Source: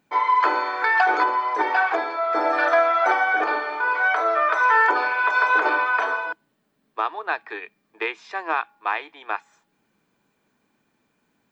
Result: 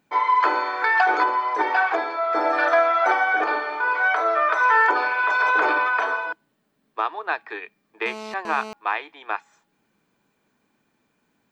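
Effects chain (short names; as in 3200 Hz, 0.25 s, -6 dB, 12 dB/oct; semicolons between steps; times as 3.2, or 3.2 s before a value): 5.2–5.96 transient shaper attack -7 dB, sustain +6 dB; 8.06–8.73 GSM buzz -35 dBFS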